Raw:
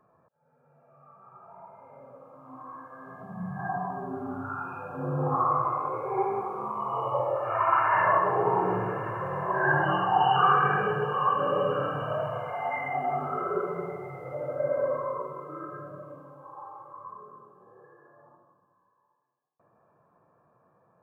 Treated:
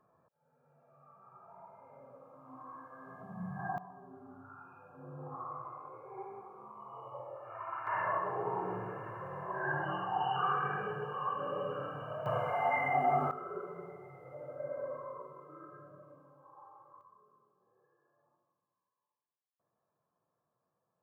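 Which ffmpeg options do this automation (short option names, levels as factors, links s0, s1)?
-af "asetnsamples=n=441:p=0,asendcmd='3.78 volume volume -18dB;7.87 volume volume -11dB;12.26 volume volume 0dB;13.31 volume volume -12.5dB;17.01 volume volume -19dB',volume=0.501"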